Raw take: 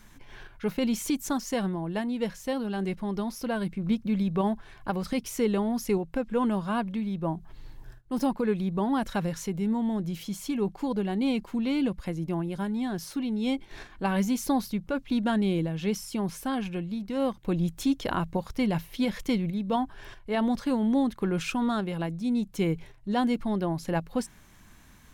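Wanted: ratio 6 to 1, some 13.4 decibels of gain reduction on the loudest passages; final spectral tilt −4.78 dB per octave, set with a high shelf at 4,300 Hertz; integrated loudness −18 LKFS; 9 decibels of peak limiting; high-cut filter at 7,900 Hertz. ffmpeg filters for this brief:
ffmpeg -i in.wav -af "lowpass=7900,highshelf=frequency=4300:gain=8,acompressor=threshold=-36dB:ratio=6,volume=24dB,alimiter=limit=-9dB:level=0:latency=1" out.wav

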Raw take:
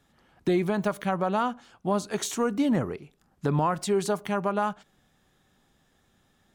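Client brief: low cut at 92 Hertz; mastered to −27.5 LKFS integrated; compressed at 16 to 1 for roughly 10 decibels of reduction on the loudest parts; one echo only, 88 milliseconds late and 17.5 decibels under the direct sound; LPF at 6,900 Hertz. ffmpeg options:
ffmpeg -i in.wav -af "highpass=92,lowpass=6900,acompressor=threshold=-30dB:ratio=16,aecho=1:1:88:0.133,volume=9dB" out.wav

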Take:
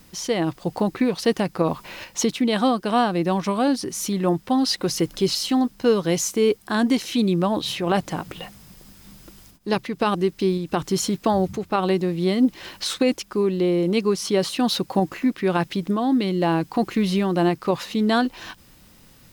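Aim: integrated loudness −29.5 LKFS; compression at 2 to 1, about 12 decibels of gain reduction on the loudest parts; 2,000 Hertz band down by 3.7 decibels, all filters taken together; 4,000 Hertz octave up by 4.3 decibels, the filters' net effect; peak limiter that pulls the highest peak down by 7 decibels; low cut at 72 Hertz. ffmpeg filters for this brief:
ffmpeg -i in.wav -af "highpass=72,equalizer=frequency=2000:width_type=o:gain=-7,equalizer=frequency=4000:width_type=o:gain=7,acompressor=threshold=-37dB:ratio=2,volume=4.5dB,alimiter=limit=-20dB:level=0:latency=1" out.wav

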